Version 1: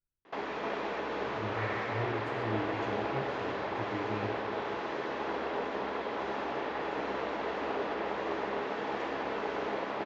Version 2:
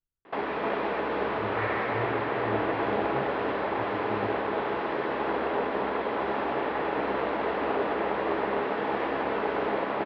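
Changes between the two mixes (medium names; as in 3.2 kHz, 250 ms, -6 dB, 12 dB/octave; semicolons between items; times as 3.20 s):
background +6.5 dB; master: add Bessel low-pass 2.8 kHz, order 8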